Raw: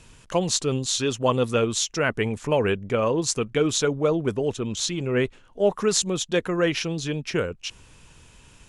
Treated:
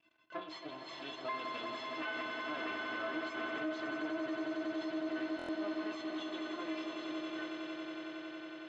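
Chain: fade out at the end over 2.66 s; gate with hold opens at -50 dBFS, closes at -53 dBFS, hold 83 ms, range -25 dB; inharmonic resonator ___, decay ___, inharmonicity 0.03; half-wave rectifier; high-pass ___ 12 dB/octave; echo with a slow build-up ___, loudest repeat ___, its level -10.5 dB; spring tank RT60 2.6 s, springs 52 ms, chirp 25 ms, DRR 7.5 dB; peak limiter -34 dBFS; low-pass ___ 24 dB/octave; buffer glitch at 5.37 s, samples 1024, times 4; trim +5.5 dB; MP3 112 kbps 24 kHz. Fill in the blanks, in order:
310 Hz, 0.37 s, 210 Hz, 92 ms, 8, 3.6 kHz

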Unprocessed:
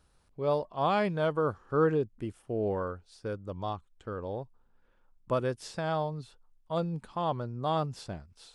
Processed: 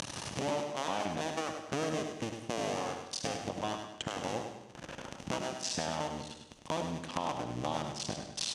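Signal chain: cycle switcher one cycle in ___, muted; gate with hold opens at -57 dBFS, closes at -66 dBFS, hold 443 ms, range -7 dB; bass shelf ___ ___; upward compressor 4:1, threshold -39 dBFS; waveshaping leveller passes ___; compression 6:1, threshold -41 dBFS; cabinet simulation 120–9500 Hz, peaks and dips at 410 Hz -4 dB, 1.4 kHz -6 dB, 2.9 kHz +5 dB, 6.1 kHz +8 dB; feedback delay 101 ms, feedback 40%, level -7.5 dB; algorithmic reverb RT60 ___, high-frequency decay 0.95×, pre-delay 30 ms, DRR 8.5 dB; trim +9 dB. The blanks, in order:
2, 270 Hz, -4.5 dB, 1, 0.75 s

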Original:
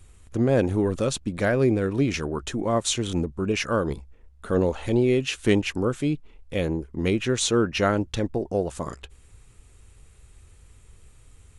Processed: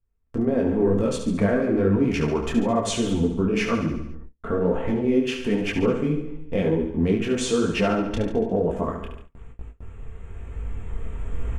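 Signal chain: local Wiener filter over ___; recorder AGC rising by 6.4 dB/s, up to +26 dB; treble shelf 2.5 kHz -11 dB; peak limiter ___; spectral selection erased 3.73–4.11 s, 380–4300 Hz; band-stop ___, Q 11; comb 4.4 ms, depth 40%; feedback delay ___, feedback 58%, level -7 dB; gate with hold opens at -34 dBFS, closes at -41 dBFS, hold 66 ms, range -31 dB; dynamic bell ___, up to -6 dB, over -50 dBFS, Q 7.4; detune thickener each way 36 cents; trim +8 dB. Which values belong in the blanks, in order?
9 samples, -19 dBFS, 3.9 kHz, 71 ms, 130 Hz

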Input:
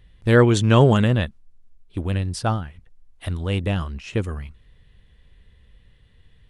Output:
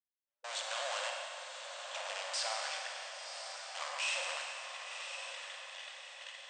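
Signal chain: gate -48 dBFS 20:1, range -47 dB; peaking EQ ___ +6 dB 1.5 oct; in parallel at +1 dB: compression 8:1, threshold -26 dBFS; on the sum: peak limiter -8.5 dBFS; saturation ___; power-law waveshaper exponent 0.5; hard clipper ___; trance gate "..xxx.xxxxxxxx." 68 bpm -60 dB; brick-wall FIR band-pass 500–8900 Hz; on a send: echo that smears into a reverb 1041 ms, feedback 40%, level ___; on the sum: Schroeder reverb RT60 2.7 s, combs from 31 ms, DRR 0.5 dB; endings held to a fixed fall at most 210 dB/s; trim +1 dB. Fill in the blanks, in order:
3.2 kHz, -25.5 dBFS, -36 dBFS, -7.5 dB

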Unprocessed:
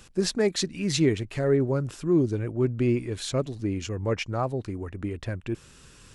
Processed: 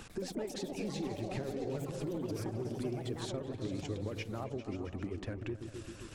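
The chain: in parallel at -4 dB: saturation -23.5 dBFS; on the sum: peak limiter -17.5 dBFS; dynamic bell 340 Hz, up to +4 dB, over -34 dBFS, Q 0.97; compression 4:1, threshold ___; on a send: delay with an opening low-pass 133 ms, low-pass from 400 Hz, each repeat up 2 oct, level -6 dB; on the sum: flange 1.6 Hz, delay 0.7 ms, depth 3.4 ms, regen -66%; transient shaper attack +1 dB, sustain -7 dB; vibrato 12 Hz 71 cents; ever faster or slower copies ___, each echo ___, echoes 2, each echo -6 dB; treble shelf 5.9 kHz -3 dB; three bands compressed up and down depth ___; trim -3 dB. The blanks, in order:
-32 dBFS, 97 ms, +6 st, 40%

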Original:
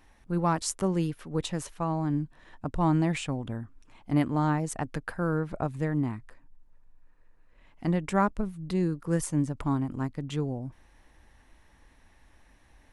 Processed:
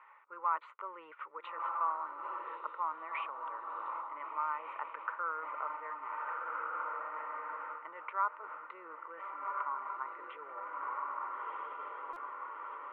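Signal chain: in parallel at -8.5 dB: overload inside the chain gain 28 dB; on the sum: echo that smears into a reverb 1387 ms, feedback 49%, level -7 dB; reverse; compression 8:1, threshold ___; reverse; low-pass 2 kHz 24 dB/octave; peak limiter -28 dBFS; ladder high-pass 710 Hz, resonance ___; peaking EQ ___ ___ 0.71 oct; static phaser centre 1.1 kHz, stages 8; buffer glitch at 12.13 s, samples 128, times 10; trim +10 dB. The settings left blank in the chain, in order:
-31 dBFS, 35%, 1.5 kHz, +11 dB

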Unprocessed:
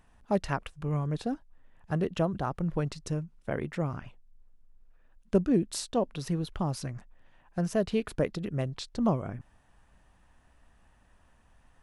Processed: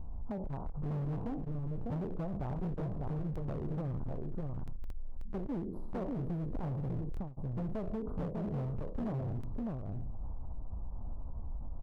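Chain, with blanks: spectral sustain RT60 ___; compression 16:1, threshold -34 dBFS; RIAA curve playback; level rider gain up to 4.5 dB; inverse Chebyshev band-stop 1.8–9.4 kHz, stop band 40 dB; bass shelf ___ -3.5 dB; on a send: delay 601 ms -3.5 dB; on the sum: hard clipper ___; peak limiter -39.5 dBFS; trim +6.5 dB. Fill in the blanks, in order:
0.42 s, 340 Hz, -27.5 dBFS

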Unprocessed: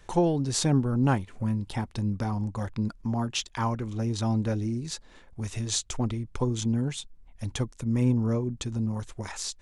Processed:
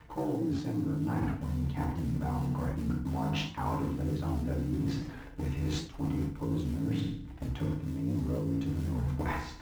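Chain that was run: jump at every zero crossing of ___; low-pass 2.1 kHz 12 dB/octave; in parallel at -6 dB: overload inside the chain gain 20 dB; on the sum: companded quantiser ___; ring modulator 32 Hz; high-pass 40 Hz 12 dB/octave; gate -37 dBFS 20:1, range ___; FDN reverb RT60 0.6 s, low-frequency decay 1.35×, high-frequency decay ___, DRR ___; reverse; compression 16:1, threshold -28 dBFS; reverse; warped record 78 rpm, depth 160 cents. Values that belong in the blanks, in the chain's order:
-38 dBFS, 6-bit, -7 dB, 0.9×, -2.5 dB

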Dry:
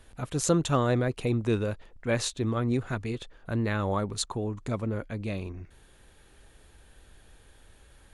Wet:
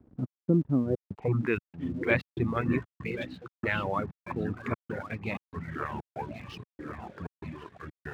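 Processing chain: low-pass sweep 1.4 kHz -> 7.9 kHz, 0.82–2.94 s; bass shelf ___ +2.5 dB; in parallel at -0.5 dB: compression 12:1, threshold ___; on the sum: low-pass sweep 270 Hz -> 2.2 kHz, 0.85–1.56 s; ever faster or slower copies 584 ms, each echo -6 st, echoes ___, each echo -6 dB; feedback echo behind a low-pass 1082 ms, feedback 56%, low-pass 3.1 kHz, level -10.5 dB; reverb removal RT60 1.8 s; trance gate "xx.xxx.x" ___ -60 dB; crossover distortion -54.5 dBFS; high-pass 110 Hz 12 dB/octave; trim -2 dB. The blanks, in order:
140 Hz, -38 dBFS, 2, 95 bpm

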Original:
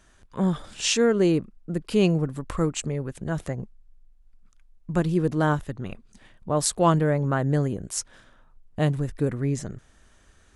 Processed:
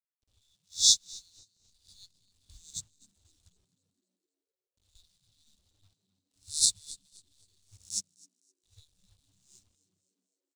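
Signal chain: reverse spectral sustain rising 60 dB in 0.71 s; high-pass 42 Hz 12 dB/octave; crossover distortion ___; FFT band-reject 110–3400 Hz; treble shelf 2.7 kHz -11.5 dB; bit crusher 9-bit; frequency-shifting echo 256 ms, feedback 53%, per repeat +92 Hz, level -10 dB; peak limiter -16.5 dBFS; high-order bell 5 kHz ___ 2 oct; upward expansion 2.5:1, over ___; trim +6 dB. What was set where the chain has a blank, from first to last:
-35 dBFS, +9.5 dB, -44 dBFS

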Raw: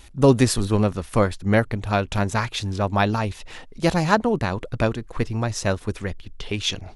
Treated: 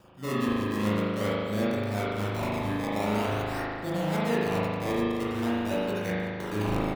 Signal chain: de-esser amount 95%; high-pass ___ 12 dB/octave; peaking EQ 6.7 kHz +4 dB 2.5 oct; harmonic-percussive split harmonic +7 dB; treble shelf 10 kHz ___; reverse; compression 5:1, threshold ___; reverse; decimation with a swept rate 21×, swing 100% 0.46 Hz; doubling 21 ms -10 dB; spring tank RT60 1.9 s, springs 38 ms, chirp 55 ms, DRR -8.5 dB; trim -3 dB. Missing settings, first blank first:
210 Hz, -11.5 dB, -31 dBFS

